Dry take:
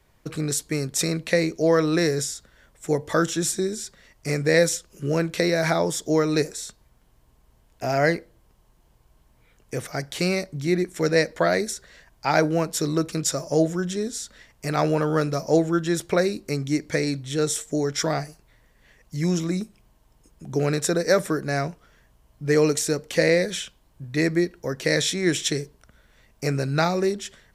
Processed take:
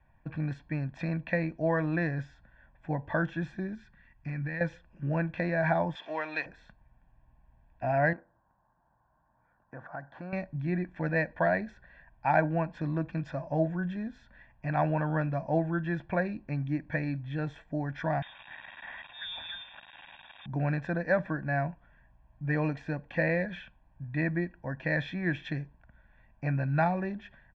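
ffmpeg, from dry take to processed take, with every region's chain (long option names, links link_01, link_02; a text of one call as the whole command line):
ffmpeg -i in.wav -filter_complex "[0:a]asettb=1/sr,asplit=3[link_01][link_02][link_03];[link_01]atrim=end=3.754[link_04];[link_02]atrim=start=3.75:end=4.61,asetpts=PTS-STARTPTS,afade=type=in:duration=0.004:curve=qsin,afade=type=out:start_time=0.856:duration=0.004:curve=qsin,equalizer=frequency=610:width=1.4:gain=-10,acompressor=threshold=-26dB:ratio=4:attack=3.2:release=140:knee=1:detection=peak[link_05];[link_03]atrim=start=4.606[link_06];[link_04][link_05]acrossfade=duration=0.004:curve1=hsin:curve2=qsin[link_07];[link_07][link_06]acrossfade=duration=0.004:curve1=qsin:curve2=hsin,asettb=1/sr,asplit=3[link_08][link_09][link_10];[link_08]atrim=end=5.954[link_11];[link_09]atrim=start=5.95:end=6.46,asetpts=PTS-STARTPTS,afade=type=in:duration=0.004:curve=qsin,afade=type=out:start_time=0.506:duration=0.004:curve=qsin,aeval=exprs='val(0)+0.5*0.0158*sgn(val(0))':channel_layout=same,highpass=600,equalizer=frequency=3200:width_type=o:width=1.2:gain=11[link_12];[link_10]atrim=start=6.456[link_13];[link_11][link_12]acrossfade=duration=0.004:curve1=hsin:curve2=qsin[link_14];[link_14][link_13]acrossfade=duration=0.004:curve1=qsin:curve2=hsin,asettb=1/sr,asplit=3[link_15][link_16][link_17];[link_15]atrim=end=8.134[link_18];[link_16]atrim=start=8.13:end=10.33,asetpts=PTS-STARTPTS,afade=type=in:duration=0.004:curve=qsin,afade=type=out:start_time=2.196:duration=0.004:curve=qsin,highshelf=frequency=1800:width_type=q:width=3:gain=-9.5,acompressor=threshold=-28dB:ratio=3:attack=3.2:release=140:knee=1:detection=peak,highpass=frequency=310:poles=1[link_19];[link_17]atrim=start=10.326[link_20];[link_18][link_19]acrossfade=duration=0.004:curve1=hsin:curve2=qsin[link_21];[link_21][link_20]acrossfade=duration=0.004:curve1=qsin:curve2=hsin,asettb=1/sr,asplit=3[link_22][link_23][link_24];[link_22]atrim=end=18.224[link_25];[link_23]atrim=start=18.22:end=20.46,asetpts=PTS-STARTPTS,afade=type=in:duration=0.004:curve=qsin,afade=type=out:start_time=2.236:duration=0.004:curve=qsin,aeval=exprs='val(0)+0.5*0.0376*sgn(val(0))':channel_layout=same,lowpass=frequency=3200:width_type=q:width=0.5098,lowpass=frequency=3200:width_type=q:width=0.6013,lowpass=frequency=3200:width_type=q:width=0.9,lowpass=frequency=3200:width_type=q:width=2.563,afreqshift=-3800[link_26];[link_24]atrim=start=20.456[link_27];[link_25][link_26]acrossfade=duration=0.004:curve1=hsin:curve2=qsin[link_28];[link_28][link_27]acrossfade=duration=0.004:curve1=qsin:curve2=hsin,lowpass=frequency=2300:width=0.5412,lowpass=frequency=2300:width=1.3066,aecho=1:1:1.2:0.85,volume=-7dB" out.wav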